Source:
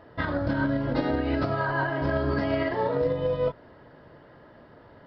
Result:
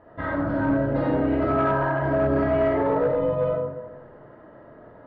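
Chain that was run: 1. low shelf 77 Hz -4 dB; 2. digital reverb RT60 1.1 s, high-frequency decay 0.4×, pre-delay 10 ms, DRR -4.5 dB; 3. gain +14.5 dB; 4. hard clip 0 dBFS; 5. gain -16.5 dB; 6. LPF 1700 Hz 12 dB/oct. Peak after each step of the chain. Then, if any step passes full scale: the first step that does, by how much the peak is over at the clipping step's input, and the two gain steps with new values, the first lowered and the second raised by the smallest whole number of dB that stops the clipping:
-13.5, -7.0, +7.5, 0.0, -16.5, -16.0 dBFS; step 3, 7.5 dB; step 3 +6.5 dB, step 5 -8.5 dB

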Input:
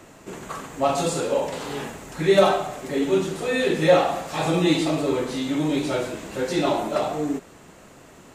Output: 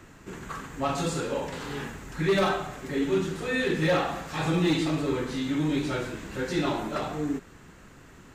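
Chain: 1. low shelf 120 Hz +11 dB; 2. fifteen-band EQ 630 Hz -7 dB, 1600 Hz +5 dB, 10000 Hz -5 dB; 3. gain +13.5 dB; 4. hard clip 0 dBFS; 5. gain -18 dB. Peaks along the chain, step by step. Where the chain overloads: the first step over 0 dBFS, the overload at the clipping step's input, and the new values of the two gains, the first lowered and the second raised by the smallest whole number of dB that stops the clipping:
-3.0, -6.5, +7.0, 0.0, -18.0 dBFS; step 3, 7.0 dB; step 3 +6.5 dB, step 5 -11 dB

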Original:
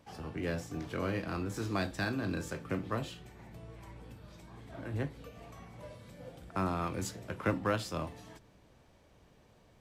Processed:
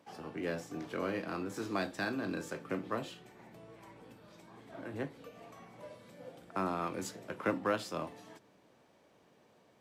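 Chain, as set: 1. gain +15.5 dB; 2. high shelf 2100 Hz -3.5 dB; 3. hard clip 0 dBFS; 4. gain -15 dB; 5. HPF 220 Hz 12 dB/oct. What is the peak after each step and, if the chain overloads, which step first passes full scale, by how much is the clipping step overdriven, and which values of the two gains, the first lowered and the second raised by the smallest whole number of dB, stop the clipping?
-3.0, -3.5, -3.5, -18.5, -18.0 dBFS; no overload

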